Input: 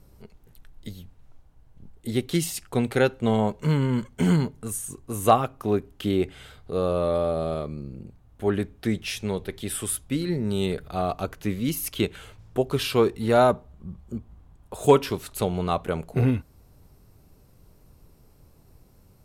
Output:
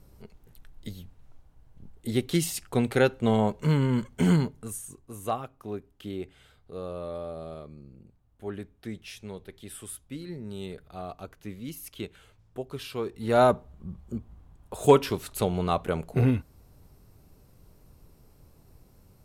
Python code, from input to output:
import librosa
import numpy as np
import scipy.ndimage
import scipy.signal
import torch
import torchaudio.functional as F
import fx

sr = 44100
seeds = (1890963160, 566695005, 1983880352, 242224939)

y = fx.gain(x, sr, db=fx.line((4.35, -1.0), (5.24, -12.0), (13.03, -12.0), (13.43, -1.0)))